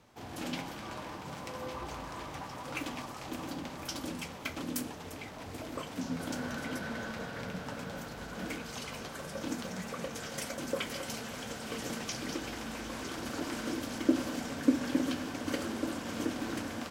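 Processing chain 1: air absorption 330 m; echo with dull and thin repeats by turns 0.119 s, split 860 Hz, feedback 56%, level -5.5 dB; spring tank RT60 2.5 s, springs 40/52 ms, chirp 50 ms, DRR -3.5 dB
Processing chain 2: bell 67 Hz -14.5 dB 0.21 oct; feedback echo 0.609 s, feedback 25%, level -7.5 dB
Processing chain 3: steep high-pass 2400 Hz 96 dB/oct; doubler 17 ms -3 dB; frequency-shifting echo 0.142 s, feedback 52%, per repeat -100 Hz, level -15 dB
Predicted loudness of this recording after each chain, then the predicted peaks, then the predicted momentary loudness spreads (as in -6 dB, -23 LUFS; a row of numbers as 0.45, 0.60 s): -31.5, -37.0, -43.0 LUFS; -12.5, -13.0, -20.5 dBFS; 12, 9, 9 LU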